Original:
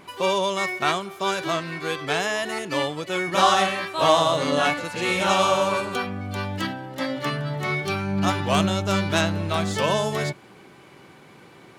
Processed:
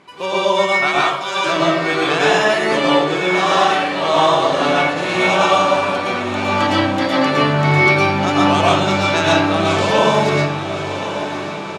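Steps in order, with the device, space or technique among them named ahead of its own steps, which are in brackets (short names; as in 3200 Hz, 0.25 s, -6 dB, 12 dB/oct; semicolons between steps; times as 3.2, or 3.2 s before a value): 0.87–1.35 HPF 570 Hz -> 1400 Hz 12 dB/oct; far laptop microphone (reverb RT60 0.75 s, pre-delay 0.106 s, DRR -6 dB; HPF 160 Hz 6 dB/oct; AGC gain up to 9 dB); LPF 7100 Hz 12 dB/oct; echo 1.07 s -14 dB; diffused feedback echo 1.081 s, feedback 65%, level -11.5 dB; gain -1 dB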